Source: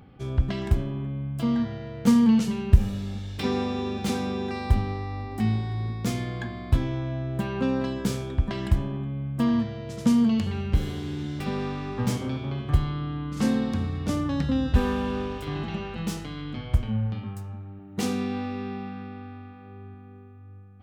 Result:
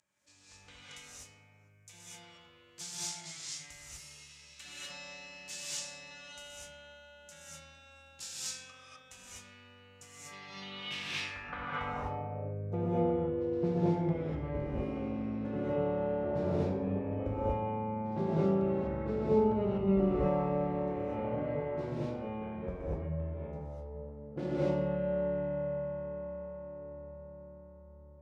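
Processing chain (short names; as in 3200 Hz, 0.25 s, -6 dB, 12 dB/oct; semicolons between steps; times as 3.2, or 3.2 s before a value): spectral repair 13.71–14.05, 1400–3100 Hz after; wide varispeed 0.738×; band-pass sweep 7200 Hz -> 440 Hz, 10.08–12.46; non-linear reverb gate 0.27 s rising, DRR -8 dB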